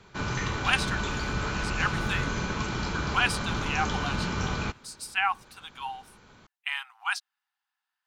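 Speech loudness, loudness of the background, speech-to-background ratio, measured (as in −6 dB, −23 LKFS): −31.0 LKFS, −30.5 LKFS, −0.5 dB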